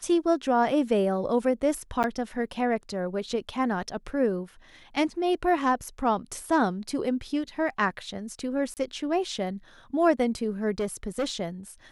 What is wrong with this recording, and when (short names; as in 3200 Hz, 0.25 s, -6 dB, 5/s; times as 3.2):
2.03–2.04 gap 8.8 ms
8.74–8.77 gap 28 ms
10.71–11.32 clipped -23.5 dBFS